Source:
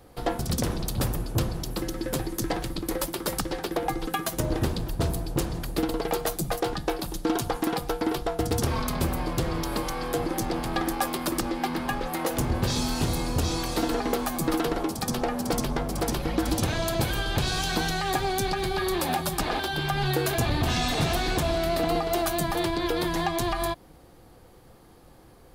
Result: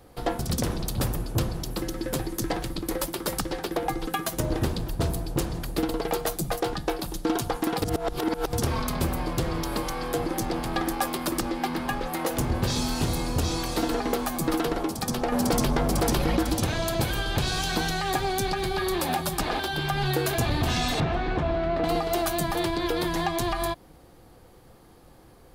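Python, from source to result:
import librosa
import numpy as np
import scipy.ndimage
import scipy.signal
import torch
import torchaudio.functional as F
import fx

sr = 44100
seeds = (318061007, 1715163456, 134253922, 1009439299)

y = fx.env_flatten(x, sr, amount_pct=70, at=(15.32, 16.43))
y = fx.lowpass(y, sr, hz=2000.0, slope=12, at=(21.0, 21.84))
y = fx.edit(y, sr, fx.reverse_span(start_s=7.82, length_s=0.71), tone=tone)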